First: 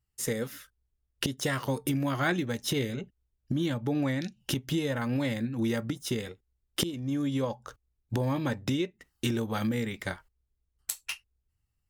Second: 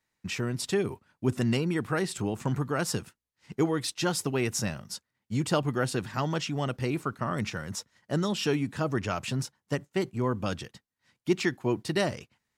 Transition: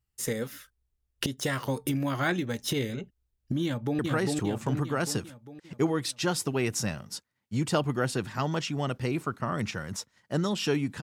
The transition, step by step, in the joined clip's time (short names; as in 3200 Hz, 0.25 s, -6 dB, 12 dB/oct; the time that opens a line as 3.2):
first
3.64–3.99 echo throw 0.4 s, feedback 55%, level -1.5 dB
3.99 switch to second from 1.78 s